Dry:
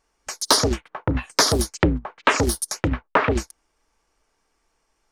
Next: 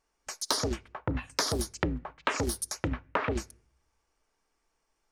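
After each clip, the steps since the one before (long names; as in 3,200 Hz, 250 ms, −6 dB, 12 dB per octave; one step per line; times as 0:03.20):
downward compressor, threshold −17 dBFS, peak gain reduction 6 dB
on a send at −23 dB: convolution reverb RT60 0.55 s, pre-delay 5 ms
on the sum: level −7.5 dB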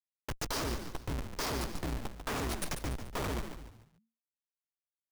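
comparator with hysteresis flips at −31.5 dBFS
echo with shifted repeats 144 ms, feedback 38%, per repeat −57 Hz, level −7.5 dB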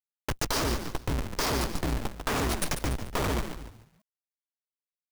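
mu-law and A-law mismatch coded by A
in parallel at +2 dB: downward compressor, threshold −45 dBFS, peak gain reduction 11.5 dB
on the sum: level +6 dB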